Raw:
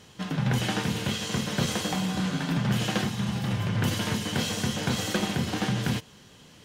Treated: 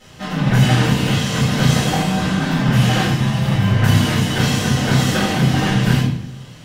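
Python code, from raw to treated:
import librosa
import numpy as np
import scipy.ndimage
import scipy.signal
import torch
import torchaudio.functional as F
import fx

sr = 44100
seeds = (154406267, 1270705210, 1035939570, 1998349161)

y = fx.room_shoebox(x, sr, seeds[0], volume_m3=130.0, walls='mixed', distance_m=4.1)
y = y * librosa.db_to_amplitude(-3.5)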